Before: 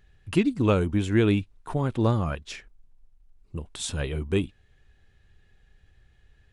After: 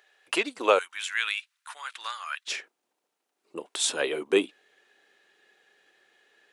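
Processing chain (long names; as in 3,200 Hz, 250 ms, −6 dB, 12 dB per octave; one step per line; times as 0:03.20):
high-pass filter 510 Hz 24 dB per octave, from 0:00.79 1,400 Hz, from 0:02.48 350 Hz
level +6.5 dB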